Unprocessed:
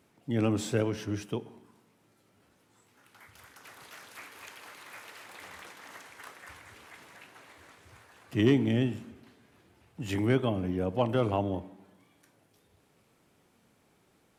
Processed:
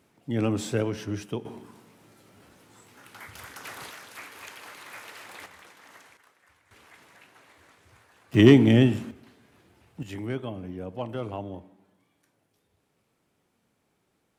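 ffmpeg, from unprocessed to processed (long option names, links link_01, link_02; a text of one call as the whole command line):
ffmpeg -i in.wav -af "asetnsamples=nb_out_samples=441:pad=0,asendcmd='1.45 volume volume 10.5dB;3.91 volume volume 4dB;5.46 volume volume -3.5dB;6.17 volume volume -14dB;6.71 volume volume -2.5dB;8.34 volume volume 9dB;9.11 volume volume 2.5dB;10.03 volume volume -6dB',volume=1.5dB" out.wav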